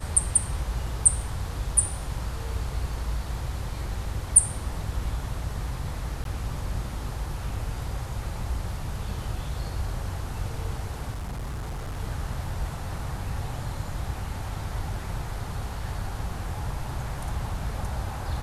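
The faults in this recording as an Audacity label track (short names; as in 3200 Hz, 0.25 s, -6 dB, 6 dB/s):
6.240000	6.250000	gap 12 ms
11.140000	11.990000	clipped -29.5 dBFS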